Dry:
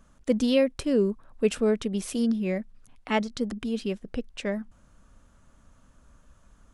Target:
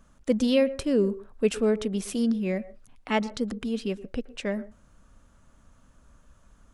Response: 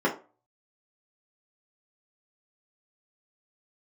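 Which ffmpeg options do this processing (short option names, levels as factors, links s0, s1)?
-filter_complex "[0:a]asplit=2[s0][s1];[1:a]atrim=start_sample=2205,asetrate=61740,aresample=44100,adelay=112[s2];[s1][s2]afir=irnorm=-1:irlink=0,volume=0.0266[s3];[s0][s3]amix=inputs=2:normalize=0"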